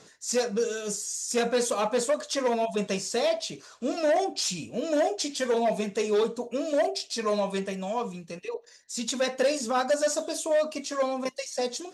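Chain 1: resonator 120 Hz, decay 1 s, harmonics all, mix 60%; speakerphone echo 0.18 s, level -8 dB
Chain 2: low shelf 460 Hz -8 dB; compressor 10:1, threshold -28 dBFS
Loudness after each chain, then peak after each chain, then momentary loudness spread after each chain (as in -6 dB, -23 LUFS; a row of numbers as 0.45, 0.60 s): -34.5, -33.5 LUFS; -21.0, -18.5 dBFS; 7, 5 LU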